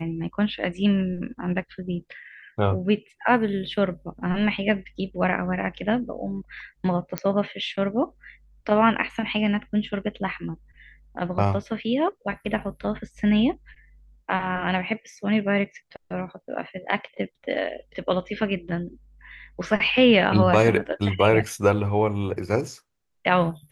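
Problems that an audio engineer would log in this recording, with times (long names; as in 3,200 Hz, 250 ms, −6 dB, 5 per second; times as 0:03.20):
0:07.18: click −9 dBFS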